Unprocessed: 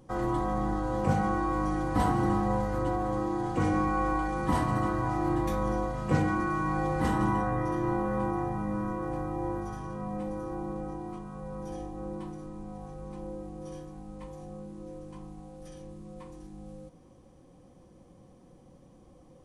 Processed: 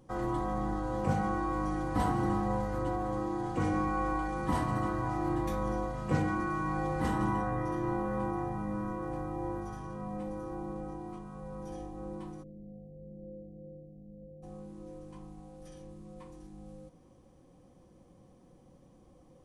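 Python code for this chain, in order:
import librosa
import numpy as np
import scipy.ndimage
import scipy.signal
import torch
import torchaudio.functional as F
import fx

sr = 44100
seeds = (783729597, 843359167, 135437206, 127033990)

y = fx.cheby_ripple(x, sr, hz=700.0, ripple_db=9, at=(12.42, 14.42), fade=0.02)
y = y * 10.0 ** (-3.5 / 20.0)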